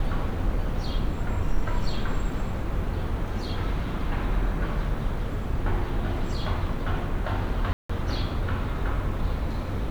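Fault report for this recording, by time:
7.73–7.89 gap 0.165 s

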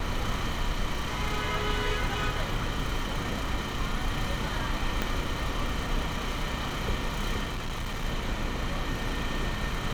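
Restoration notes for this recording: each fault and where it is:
5.02 pop -13 dBFS
7.43–8.05 clipped -29 dBFS

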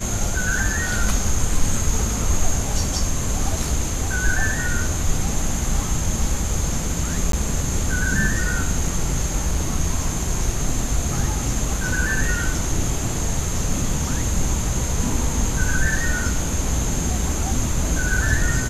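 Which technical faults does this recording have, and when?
7.32–7.33 gap

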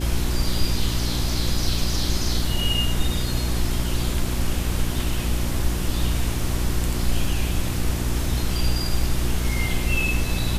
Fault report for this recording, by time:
hum 60 Hz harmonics 6 -26 dBFS

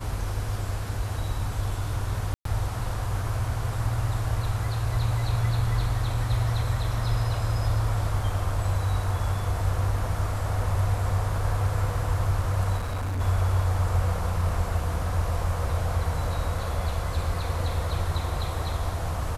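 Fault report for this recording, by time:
2.34–2.45 gap 0.113 s
12.77–13.21 clipped -26 dBFS

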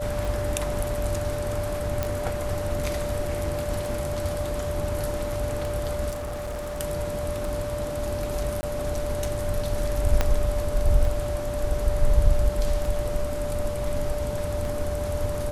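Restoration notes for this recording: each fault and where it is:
tick 33 1/3 rpm
tone 590 Hz -29 dBFS
2.03 pop -11 dBFS
6.1–6.81 clipped -29 dBFS
8.61–8.63 gap 20 ms
10.21 pop -7 dBFS

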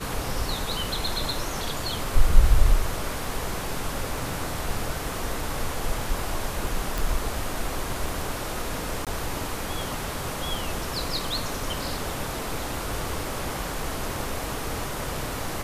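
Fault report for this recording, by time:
6.98 pop
9.05–9.07 gap 17 ms

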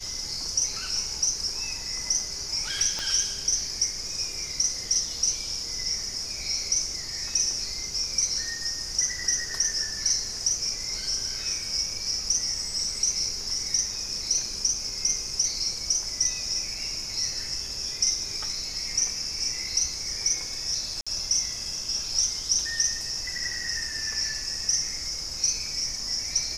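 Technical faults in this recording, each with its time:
2.99 pop -17 dBFS
21.01–21.07 gap 56 ms

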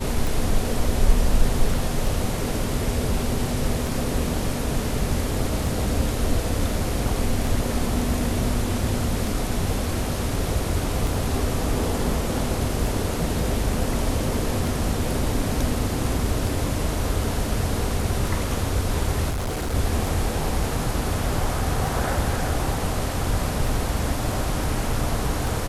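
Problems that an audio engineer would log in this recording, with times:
tick 33 1/3 rpm
19.3–19.75 clipped -23 dBFS

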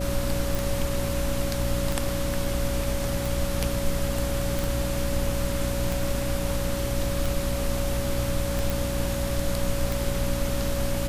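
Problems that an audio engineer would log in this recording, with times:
hum 60 Hz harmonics 5 -30 dBFS
tick 45 rpm
tone 560 Hz -31 dBFS
0.55 pop
4.64 pop
8.7 pop

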